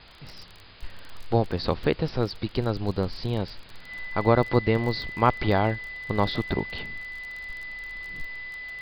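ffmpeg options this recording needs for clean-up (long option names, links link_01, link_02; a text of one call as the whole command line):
ffmpeg -i in.wav -af "adeclick=threshold=4,bandreject=frequency=2000:width=30,afwtdn=0.005" out.wav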